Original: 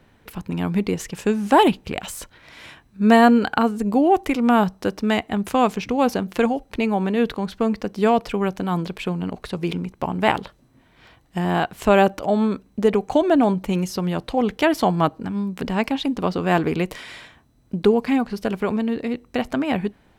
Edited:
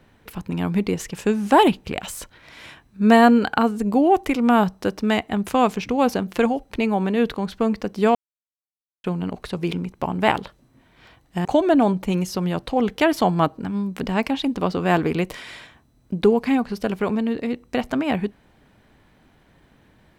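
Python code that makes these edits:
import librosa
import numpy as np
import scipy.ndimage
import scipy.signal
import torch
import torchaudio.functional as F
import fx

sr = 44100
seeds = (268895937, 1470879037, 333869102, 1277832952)

y = fx.edit(x, sr, fx.silence(start_s=8.15, length_s=0.89),
    fx.cut(start_s=11.45, length_s=1.61), tone=tone)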